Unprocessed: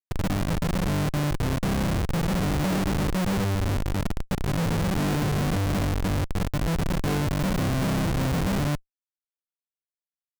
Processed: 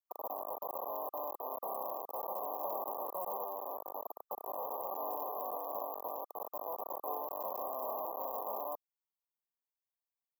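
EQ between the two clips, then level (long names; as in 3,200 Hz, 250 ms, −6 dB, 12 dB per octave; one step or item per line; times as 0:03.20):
high-pass filter 650 Hz 24 dB per octave
linear-phase brick-wall band-stop 1,200–12,000 Hz
dynamic equaliser 1,100 Hz, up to −6 dB, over −49 dBFS, Q 0.9
+1.5 dB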